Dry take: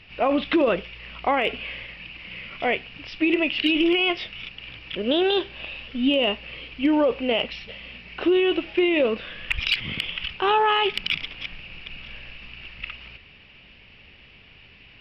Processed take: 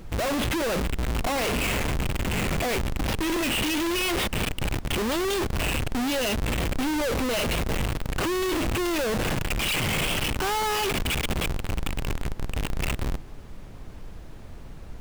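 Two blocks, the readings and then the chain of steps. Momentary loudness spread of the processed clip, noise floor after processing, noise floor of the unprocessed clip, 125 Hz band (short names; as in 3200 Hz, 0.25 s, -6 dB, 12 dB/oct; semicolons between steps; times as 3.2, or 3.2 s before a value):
17 LU, -41 dBFS, -50 dBFS, +14.5 dB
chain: Schmitt trigger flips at -34.5 dBFS; added noise brown -38 dBFS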